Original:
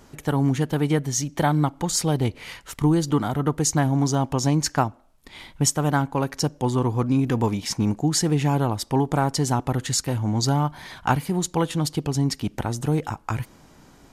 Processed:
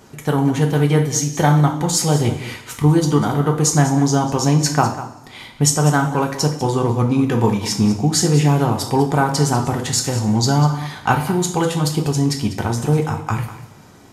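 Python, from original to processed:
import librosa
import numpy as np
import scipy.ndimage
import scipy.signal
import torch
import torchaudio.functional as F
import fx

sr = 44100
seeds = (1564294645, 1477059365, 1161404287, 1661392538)

p1 = fx.highpass(x, sr, hz=140.0, slope=6)
p2 = fx.low_shelf(p1, sr, hz=180.0, db=5.0)
p3 = p2 + fx.echo_single(p2, sr, ms=197, db=-14.0, dry=0)
p4 = fx.rev_double_slope(p3, sr, seeds[0], early_s=0.46, late_s=1.8, knee_db=-19, drr_db=2.0)
y = p4 * librosa.db_to_amplitude(3.5)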